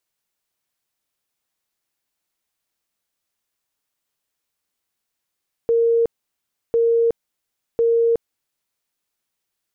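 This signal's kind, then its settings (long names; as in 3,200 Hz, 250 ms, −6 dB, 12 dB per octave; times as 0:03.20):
tone bursts 463 Hz, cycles 170, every 1.05 s, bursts 3, −13.5 dBFS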